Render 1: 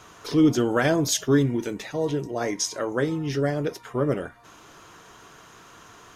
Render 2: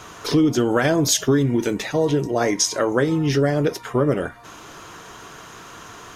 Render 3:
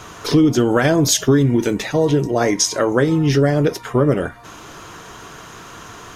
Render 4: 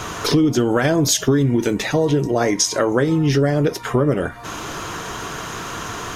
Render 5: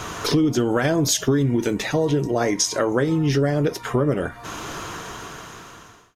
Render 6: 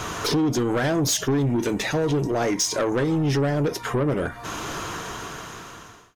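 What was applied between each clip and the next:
compressor 6:1, threshold -23 dBFS, peak gain reduction 9 dB; gain +8.5 dB
low shelf 190 Hz +4 dB; gain +2.5 dB
compressor 2:1, threshold -31 dBFS, peak gain reduction 11.5 dB; gain +8.5 dB
ending faded out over 1.39 s; gain -3 dB
soft clip -19 dBFS, distortion -12 dB; gain +1.5 dB

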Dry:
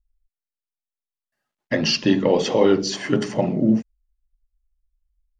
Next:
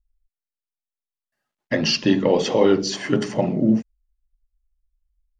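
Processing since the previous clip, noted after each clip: nothing audible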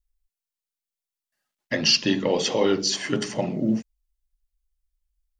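high shelf 2200 Hz +10.5 dB; gain -5.5 dB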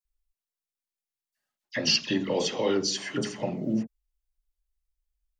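dispersion lows, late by 50 ms, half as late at 2000 Hz; gain -4.5 dB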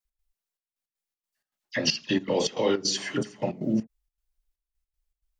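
step gate "x.xxxx..x.xx.x" 158 bpm -12 dB; gain +2 dB

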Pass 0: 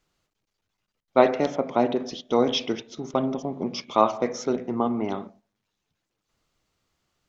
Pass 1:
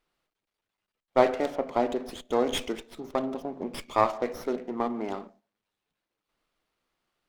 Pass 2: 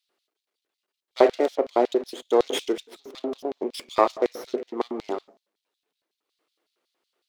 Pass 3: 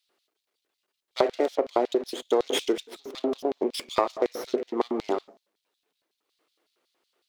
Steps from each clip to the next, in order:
bell 87 Hz -14 dB 1.9 oct; running maximum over 5 samples; gain -2.5 dB
LFO high-pass square 5.4 Hz 370–3900 Hz; gain +1.5 dB
compressor 6:1, threshold -22 dBFS, peak gain reduction 11.5 dB; gain +3 dB

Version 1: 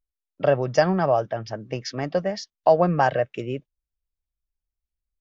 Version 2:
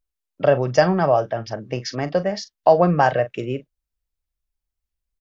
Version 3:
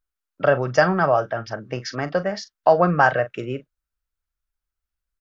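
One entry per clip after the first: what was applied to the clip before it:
doubler 40 ms -14 dB; gain +3 dB
bell 1400 Hz +11 dB 0.63 oct; gain -2.5 dB

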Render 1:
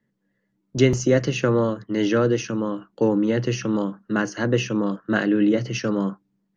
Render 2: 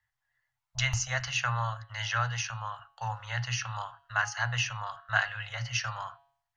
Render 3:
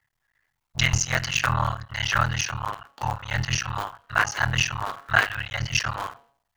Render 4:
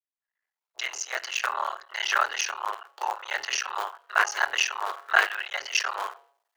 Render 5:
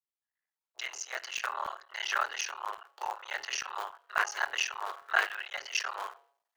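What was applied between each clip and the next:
Chebyshev band-stop 110–740 Hz, order 4; de-hum 138.8 Hz, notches 33
cycle switcher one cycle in 3, muted; gain +8.5 dB
opening faded in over 2.15 s; elliptic high-pass 370 Hz, stop band 40 dB
crackling interface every 0.28 s, samples 64, zero, from 0.82; gain -6.5 dB

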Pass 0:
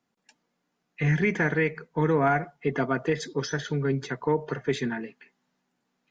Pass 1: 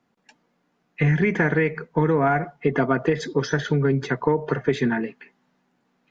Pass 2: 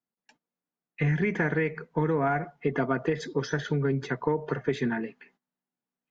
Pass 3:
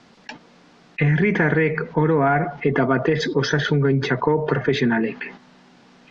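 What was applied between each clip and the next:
high shelf 4300 Hz -12 dB; compressor, threshold -25 dBFS, peak gain reduction 6.5 dB; gain +9 dB
gate -56 dBFS, range -19 dB; gain -6 dB
LPF 5300 Hz 24 dB/oct; fast leveller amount 50%; gain +6.5 dB

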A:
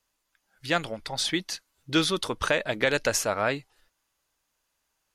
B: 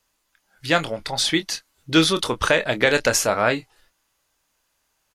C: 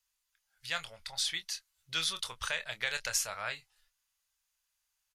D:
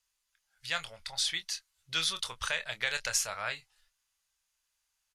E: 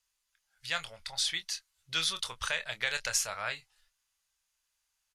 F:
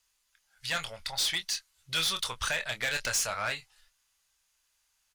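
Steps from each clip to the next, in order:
doubler 25 ms -10 dB; gain +6 dB
passive tone stack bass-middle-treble 10-0-10; gain -9 dB
LPF 12000 Hz 12 dB/oct; gain +2 dB
nothing audible
soft clip -30.5 dBFS, distortion -8 dB; gain +6.5 dB

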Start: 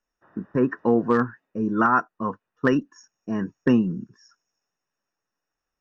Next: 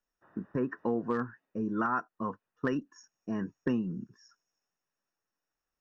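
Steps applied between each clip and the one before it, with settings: compressor 2:1, threshold -26 dBFS, peak gain reduction 7 dB; gain -5 dB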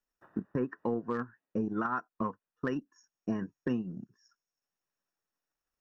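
transient shaper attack +9 dB, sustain -6 dB; limiter -19 dBFS, peak gain reduction 10 dB; gain -2.5 dB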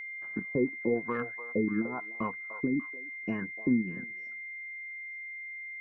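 LFO low-pass sine 1 Hz 260–2900 Hz; whine 2100 Hz -37 dBFS; delay with a stepping band-pass 0.296 s, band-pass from 700 Hz, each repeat 1.4 oct, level -7 dB; gain -1 dB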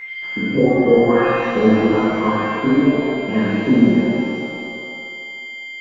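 shimmer reverb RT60 2 s, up +7 st, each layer -8 dB, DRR -11 dB; gain +6 dB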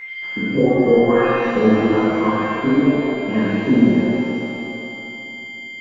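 Schroeder reverb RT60 3.8 s, DRR 10.5 dB; gain -1 dB

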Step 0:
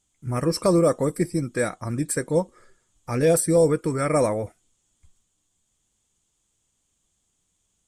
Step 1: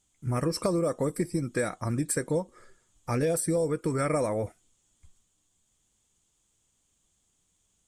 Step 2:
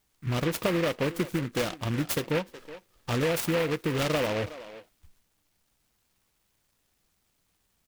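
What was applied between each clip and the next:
compressor 6:1, threshold -24 dBFS, peak gain reduction 10 dB
speakerphone echo 0.37 s, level -14 dB; noise-modulated delay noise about 1700 Hz, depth 0.13 ms

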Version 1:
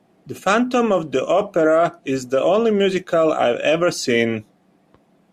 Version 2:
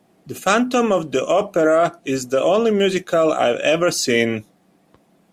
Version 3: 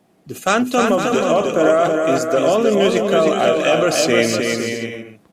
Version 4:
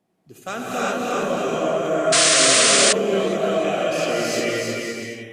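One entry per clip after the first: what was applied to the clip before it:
high shelf 5300 Hz +8.5 dB
bouncing-ball echo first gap 0.31 s, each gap 0.65×, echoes 5
non-linear reverb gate 0.41 s rising, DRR -7.5 dB; painted sound noise, 2.12–2.93, 1000–9600 Hz -2 dBFS; gain -14 dB

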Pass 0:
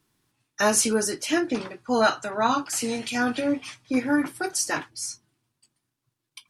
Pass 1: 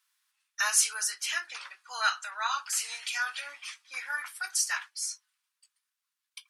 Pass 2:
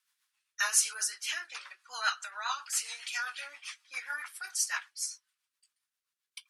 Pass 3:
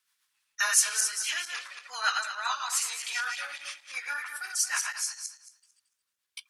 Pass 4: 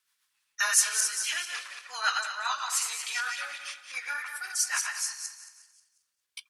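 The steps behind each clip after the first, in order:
HPF 1200 Hz 24 dB/oct; gain -1.5 dB
rotary speaker horn 7.5 Hz
regenerating reverse delay 0.112 s, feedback 43%, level -4 dB; gain +2.5 dB
feedback echo 0.179 s, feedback 48%, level -14.5 dB

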